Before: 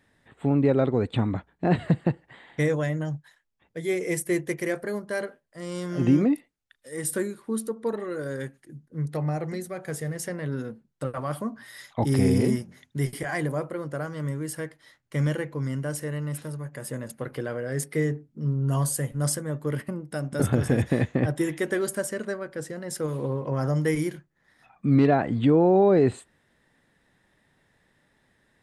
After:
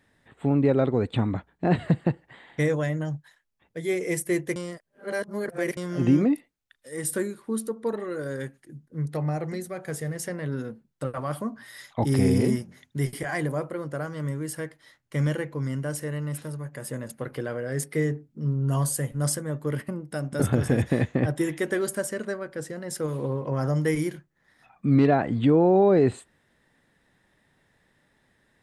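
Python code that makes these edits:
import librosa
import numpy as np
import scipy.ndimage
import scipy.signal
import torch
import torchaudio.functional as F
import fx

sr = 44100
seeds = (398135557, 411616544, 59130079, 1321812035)

y = fx.edit(x, sr, fx.reverse_span(start_s=4.56, length_s=1.21), tone=tone)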